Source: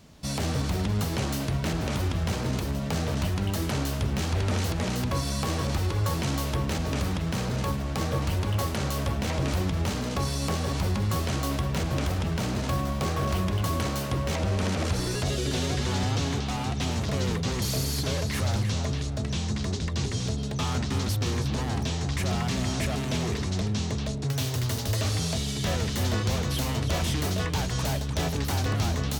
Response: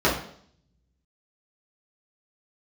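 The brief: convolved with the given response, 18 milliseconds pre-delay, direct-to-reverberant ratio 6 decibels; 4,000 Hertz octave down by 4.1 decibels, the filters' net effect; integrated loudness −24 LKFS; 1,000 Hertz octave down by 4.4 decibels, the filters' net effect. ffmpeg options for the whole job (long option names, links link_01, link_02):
-filter_complex "[0:a]equalizer=frequency=1000:width_type=o:gain=-5.5,equalizer=frequency=4000:width_type=o:gain=-5,asplit=2[link_01][link_02];[1:a]atrim=start_sample=2205,adelay=18[link_03];[link_02][link_03]afir=irnorm=-1:irlink=0,volume=-24dB[link_04];[link_01][link_04]amix=inputs=2:normalize=0,volume=3dB"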